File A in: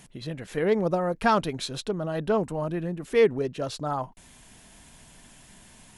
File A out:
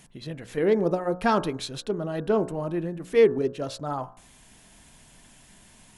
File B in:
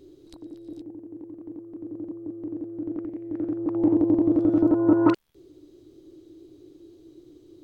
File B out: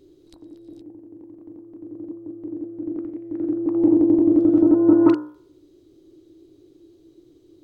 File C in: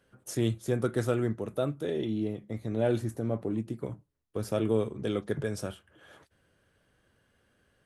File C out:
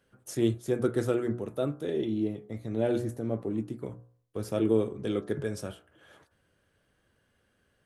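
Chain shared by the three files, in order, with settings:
hum removal 60.33 Hz, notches 29
dynamic equaliser 330 Hz, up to +7 dB, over −35 dBFS, Q 1.5
level −1.5 dB

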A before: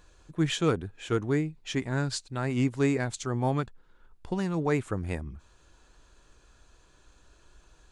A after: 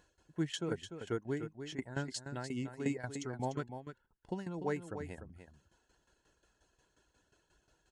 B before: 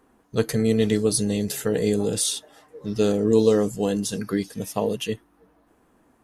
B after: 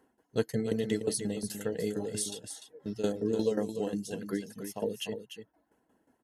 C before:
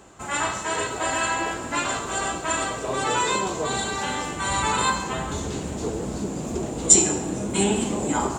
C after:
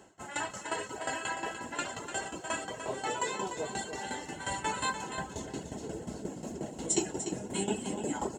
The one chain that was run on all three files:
reverb reduction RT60 0.53 s
shaped tremolo saw down 5.6 Hz, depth 85%
notch filter 3,900 Hz, Q 25
notch comb filter 1,200 Hz
on a send: single-tap delay 296 ms −9 dB
on the sum: level −4.5 dB

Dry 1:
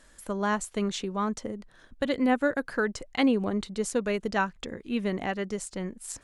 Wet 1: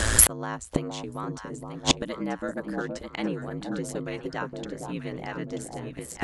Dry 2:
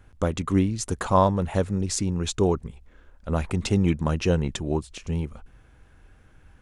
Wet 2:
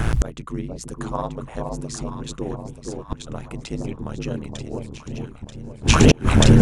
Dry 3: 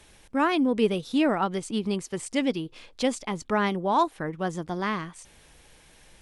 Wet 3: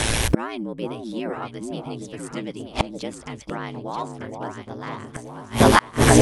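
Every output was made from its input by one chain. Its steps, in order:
in parallel at +1.5 dB: downward compressor 16 to 1, threshold −30 dBFS
on the sum: ring modulation 57 Hz
on a send: delay that swaps between a low-pass and a high-pass 467 ms, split 910 Hz, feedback 62%, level −3 dB
on the sum: gate with flip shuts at −24 dBFS, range −36 dB
tape wow and flutter 41 cents
boost into a limiter +30 dB
level −1 dB

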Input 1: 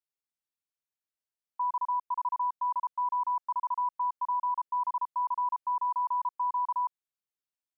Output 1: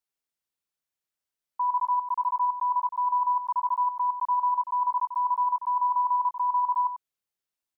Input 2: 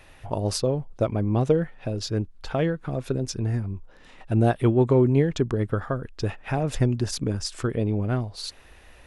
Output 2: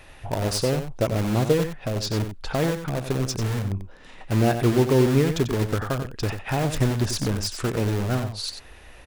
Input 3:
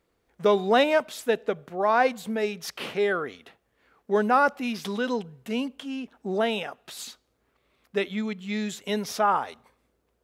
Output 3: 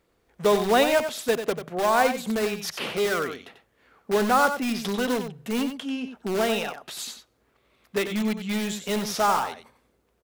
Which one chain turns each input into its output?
in parallel at −6 dB: wrap-around overflow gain 23.5 dB
on the sum: single-tap delay 92 ms −9 dB

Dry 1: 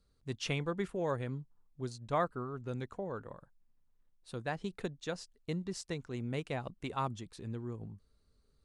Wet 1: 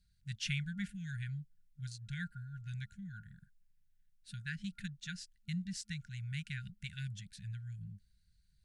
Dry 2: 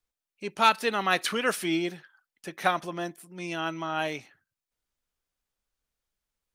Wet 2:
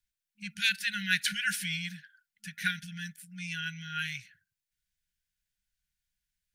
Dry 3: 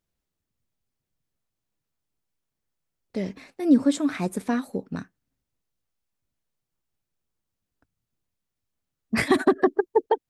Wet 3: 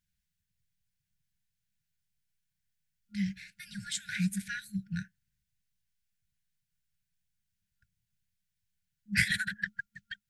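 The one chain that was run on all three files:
brick-wall band-stop 210–1,400 Hz

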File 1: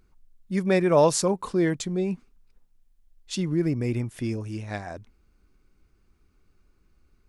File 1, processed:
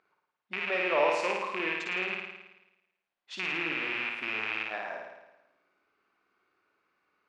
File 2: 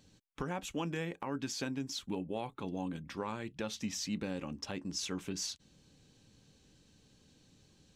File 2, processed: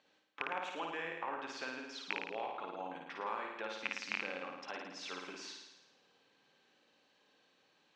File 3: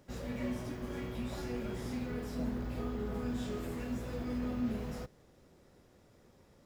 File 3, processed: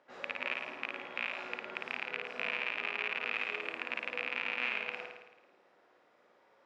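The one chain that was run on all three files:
loose part that buzzes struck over −35 dBFS, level −16 dBFS
downward compressor 1.5 to 1, threshold −35 dBFS
band-pass filter 700–2,400 Hz
on a send: flutter between parallel walls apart 9.4 metres, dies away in 1 s
on the sum: level +2.5 dB

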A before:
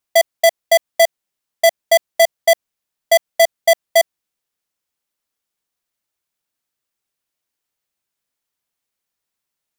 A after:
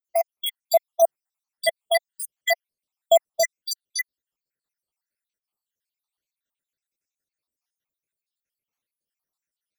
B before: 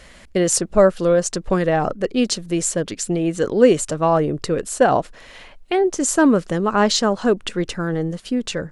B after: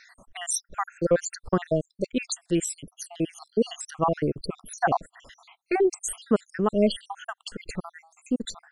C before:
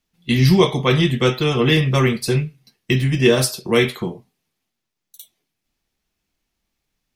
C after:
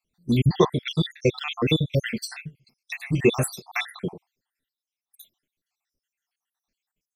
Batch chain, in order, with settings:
time-frequency cells dropped at random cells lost 74%
level −2.5 dB

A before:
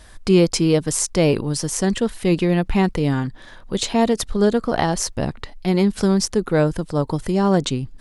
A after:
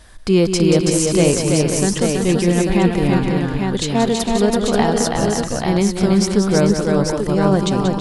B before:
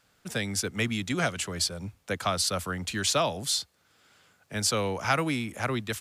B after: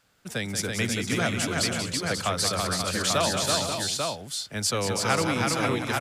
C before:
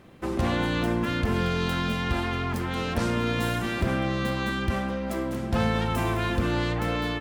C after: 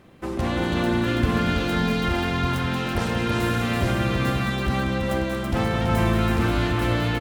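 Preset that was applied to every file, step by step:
multi-tap delay 183/329/457/534/842 ms −8/−3.5/−11/−8/−4.5 dB

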